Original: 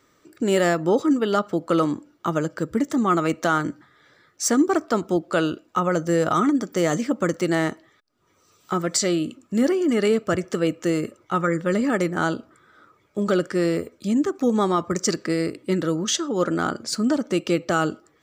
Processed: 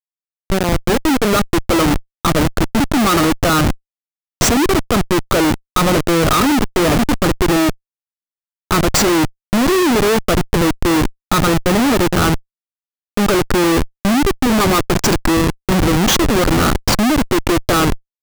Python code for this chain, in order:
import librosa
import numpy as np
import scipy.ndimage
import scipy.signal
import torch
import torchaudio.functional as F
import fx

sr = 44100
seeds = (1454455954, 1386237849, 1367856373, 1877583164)

y = fx.fade_in_head(x, sr, length_s=1.96)
y = fx.leveller(y, sr, passes=1)
y = fx.dynamic_eq(y, sr, hz=1200.0, q=1.9, threshold_db=-34.0, ratio=4.0, max_db=4)
y = fx.schmitt(y, sr, flips_db=-20.5)
y = F.gain(torch.from_numpy(y), 7.0).numpy()